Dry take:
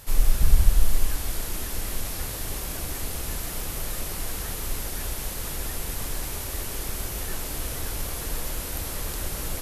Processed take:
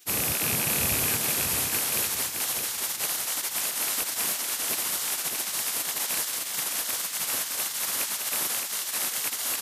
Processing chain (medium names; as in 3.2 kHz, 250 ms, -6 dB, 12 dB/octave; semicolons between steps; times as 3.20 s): rattle on loud lows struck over -30 dBFS, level -24 dBFS; spectral gate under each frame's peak -25 dB weak; treble shelf 5.6 kHz +4.5 dB; feedback delay 616 ms, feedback 32%, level -4.5 dB; trim +5 dB